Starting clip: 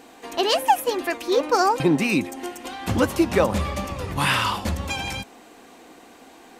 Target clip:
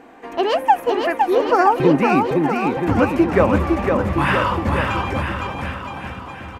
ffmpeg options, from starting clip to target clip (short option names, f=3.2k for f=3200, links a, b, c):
-filter_complex "[0:a]firequalizer=gain_entry='entry(1800,0);entry(3800,-14);entry(8400,-17)':delay=0.05:min_phase=1,asplit=2[a][b];[b]aecho=0:1:510|969|1382|1754|2089:0.631|0.398|0.251|0.158|0.1[c];[a][c]amix=inputs=2:normalize=0,volume=3.5dB"